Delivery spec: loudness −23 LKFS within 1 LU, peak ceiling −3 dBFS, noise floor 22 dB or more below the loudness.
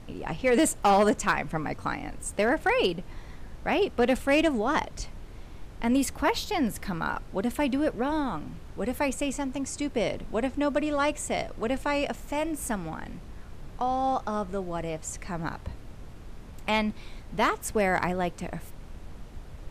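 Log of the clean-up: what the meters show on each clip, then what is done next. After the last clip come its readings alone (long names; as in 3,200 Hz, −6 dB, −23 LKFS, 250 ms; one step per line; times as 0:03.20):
share of clipped samples 0.3%; peaks flattened at −15.5 dBFS; background noise floor −44 dBFS; target noise floor −50 dBFS; integrated loudness −28.0 LKFS; sample peak −15.5 dBFS; target loudness −23.0 LKFS
→ clipped peaks rebuilt −15.5 dBFS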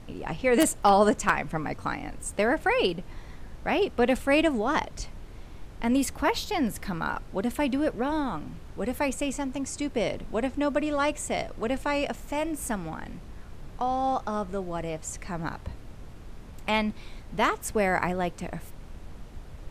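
share of clipped samples 0.0%; background noise floor −44 dBFS; target noise floor −50 dBFS
→ noise reduction from a noise print 6 dB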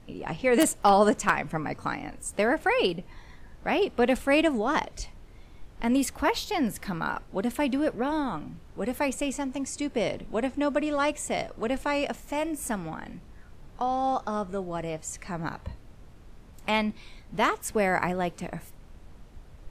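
background noise floor −49 dBFS; target noise floor −50 dBFS
→ noise reduction from a noise print 6 dB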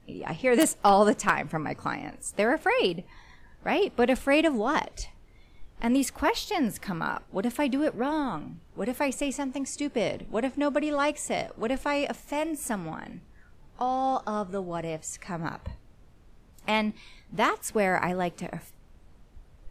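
background noise floor −55 dBFS; integrated loudness −28.0 LKFS; sample peak −6.5 dBFS; target loudness −23.0 LKFS
→ level +5 dB
brickwall limiter −3 dBFS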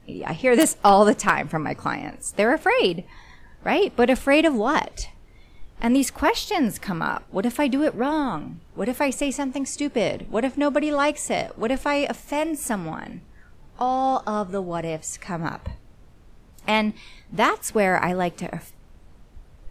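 integrated loudness −23.0 LKFS; sample peak −3.0 dBFS; background noise floor −50 dBFS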